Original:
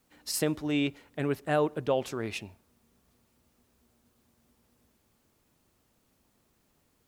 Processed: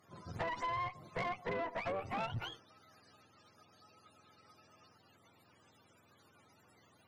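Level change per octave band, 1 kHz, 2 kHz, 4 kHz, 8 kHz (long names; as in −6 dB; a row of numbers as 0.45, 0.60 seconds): −1.0, −4.5, −10.0, −23.5 decibels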